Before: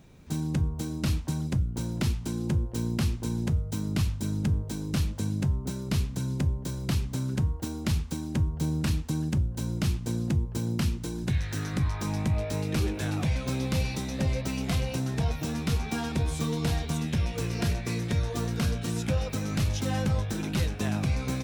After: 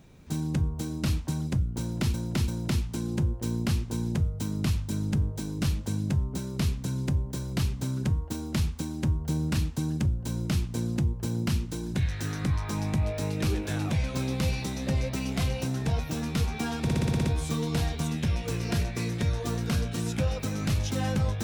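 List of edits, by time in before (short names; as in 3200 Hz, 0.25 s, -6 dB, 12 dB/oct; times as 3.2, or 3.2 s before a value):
1.8–2.14 loop, 3 plays
16.15 stutter 0.06 s, 8 plays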